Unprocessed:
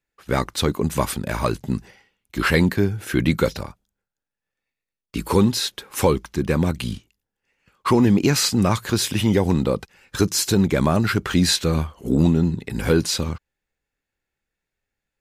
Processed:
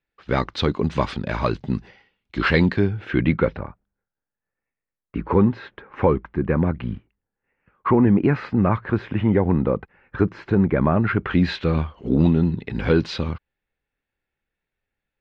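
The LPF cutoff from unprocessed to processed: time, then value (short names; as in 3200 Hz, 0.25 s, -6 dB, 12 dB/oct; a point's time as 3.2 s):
LPF 24 dB/oct
2.7 s 4300 Hz
3.65 s 2000 Hz
10.84 s 2000 Hz
11.91 s 3700 Hz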